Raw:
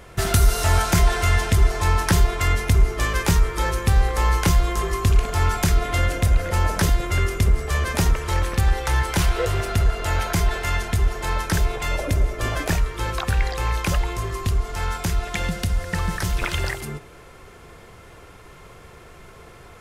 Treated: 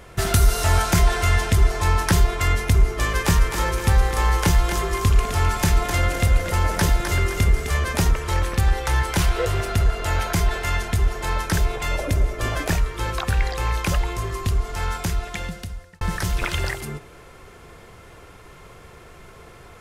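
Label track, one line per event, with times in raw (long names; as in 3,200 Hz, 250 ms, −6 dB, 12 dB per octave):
2.810000	7.790000	feedback echo with a high-pass in the loop 258 ms, feedback 42%, level −6 dB
14.990000	16.010000	fade out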